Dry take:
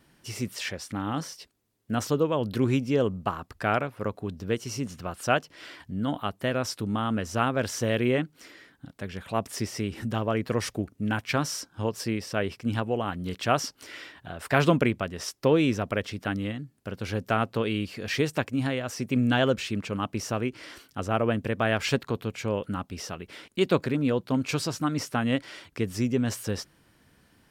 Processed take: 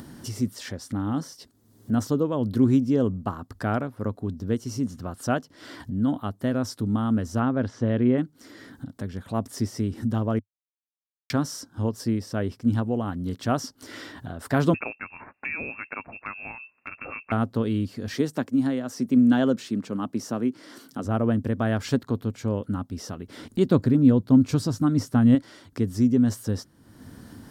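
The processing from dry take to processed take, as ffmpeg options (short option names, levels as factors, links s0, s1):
-filter_complex "[0:a]asplit=3[s0][s1][s2];[s0]afade=t=out:st=7.39:d=0.02[s3];[s1]lowpass=2900,afade=t=in:st=7.39:d=0.02,afade=t=out:st=8.17:d=0.02[s4];[s2]afade=t=in:st=8.17:d=0.02[s5];[s3][s4][s5]amix=inputs=3:normalize=0,asettb=1/sr,asplit=3[s6][s7][s8];[s6]atrim=end=14.744[s9];[s7]atrim=start=14.74:end=17.32,asetpts=PTS-STARTPTS,afade=t=in:d=0.004:c=qsin,afade=t=out:st=2.576:d=0.004:c=qsin,lowpass=f=2400:t=q:w=0.5098,lowpass=f=2400:t=q:w=0.6013,lowpass=f=2400:t=q:w=0.9,lowpass=f=2400:t=q:w=2.563,afreqshift=-2800[s10];[s8]atrim=start=17.316[s11];[s9][s10]acrossfade=d=0.004:c1=hsin:c2=qsin[s12];[s12][s11]acrossfade=d=0.004:c1=qsin:c2=hsin,asettb=1/sr,asplit=3[s13][s14][s15];[s13]atrim=end=18.144[s16];[s14]atrim=start=18.14:end=21.05,asetpts=PTS-STARTPTS,afade=t=in:d=0.004:c=qsin,afade=t=out:st=2.906:d=0.004:c=qsin,highpass=f=150:w=0.5412,highpass=f=150:w=1.3066[s17];[s15]atrim=start=21.046[s18];[s16][s17]acrossfade=d=0.004:c1=hsin:c2=qsin[s19];[s19][s18]acrossfade=d=0.004:c1=qsin:c2=hsin,asettb=1/sr,asplit=3[s20][s21][s22];[s20]atrim=end=23.374[s23];[s21]atrim=start=23.37:end=25.35,asetpts=PTS-STARTPTS,afade=t=in:d=0.004:c=qsin,afade=t=out:st=1.976:d=0.004:c=qsin,lowshelf=f=170:g=10[s24];[s22]atrim=start=25.346[s25];[s23][s24]acrossfade=d=0.004:c1=hsin:c2=qsin[s26];[s26][s25]acrossfade=d=0.004:c1=qsin:c2=hsin,asplit=3[s27][s28][s29];[s27]atrim=end=10.39,asetpts=PTS-STARTPTS,afade=t=out:st=10.386:d=0.004:c=hsin[s30];[s28]atrim=start=10.39:end=11.3,asetpts=PTS-STARTPTS,volume=0[s31];[s29]atrim=start=11.3,asetpts=PTS-STARTPTS,afade=t=in:d=0.004:c=hsin[s32];[s30][s31][s32]concat=n=3:v=0:a=1,equalizer=f=100:t=o:w=0.67:g=8,equalizer=f=250:t=o:w=0.67:g=10,equalizer=f=2500:t=o:w=0.67:g=-11,acompressor=mode=upward:threshold=0.0447:ratio=2.5,volume=0.75"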